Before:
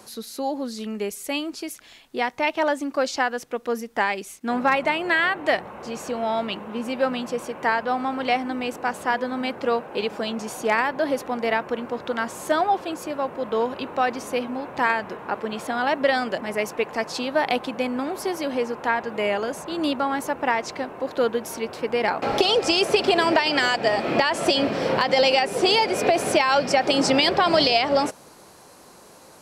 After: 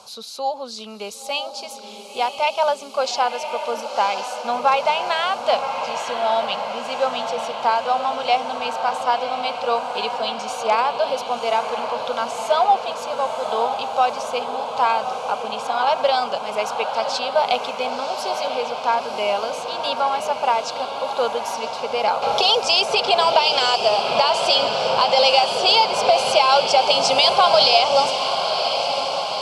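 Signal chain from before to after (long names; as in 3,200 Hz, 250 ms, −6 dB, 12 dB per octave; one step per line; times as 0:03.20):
low-pass filter 3,400 Hz 12 dB per octave
spectral tilt +3.5 dB per octave
phaser with its sweep stopped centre 760 Hz, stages 4
feedback delay with all-pass diffusion 1,023 ms, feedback 68%, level −7.5 dB
level +6.5 dB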